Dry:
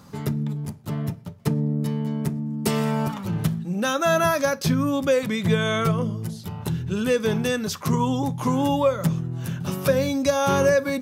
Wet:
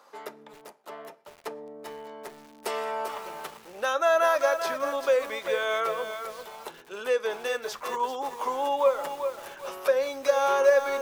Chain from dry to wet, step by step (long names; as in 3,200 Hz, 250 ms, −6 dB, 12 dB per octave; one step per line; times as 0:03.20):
high-pass filter 490 Hz 24 dB per octave
high-shelf EQ 2,900 Hz −11 dB
feedback echo at a low word length 392 ms, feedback 35%, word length 7 bits, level −7.5 dB